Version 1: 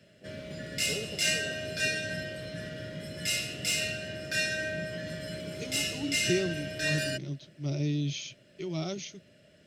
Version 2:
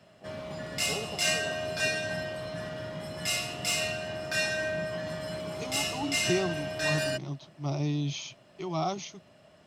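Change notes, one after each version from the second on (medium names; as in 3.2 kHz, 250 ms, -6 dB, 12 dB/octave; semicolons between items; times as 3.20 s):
master: add high-order bell 930 Hz +16 dB 1 oct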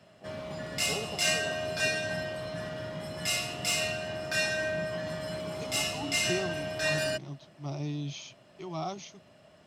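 second voice -5.0 dB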